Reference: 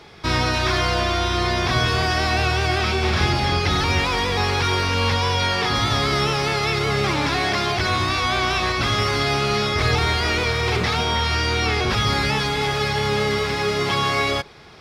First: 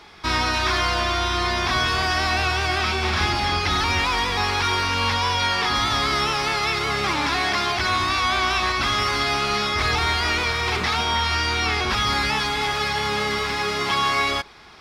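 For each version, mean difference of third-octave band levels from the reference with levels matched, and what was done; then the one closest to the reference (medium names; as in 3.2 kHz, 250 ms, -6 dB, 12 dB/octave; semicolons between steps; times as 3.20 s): 2.5 dB: graphic EQ 125/500/1000 Hz -11/-7/+3 dB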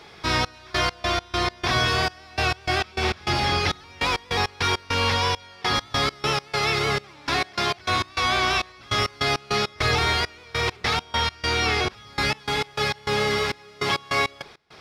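8.5 dB: bass shelf 330 Hz -6 dB; trance gate "xxx..x.x.x." 101 bpm -24 dB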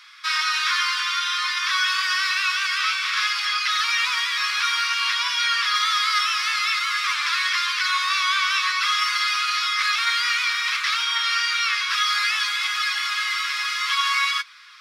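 20.0 dB: steep high-pass 1.1 kHz 72 dB/octave; flange 0.55 Hz, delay 6.7 ms, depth 6.8 ms, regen +46%; trim +6 dB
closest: first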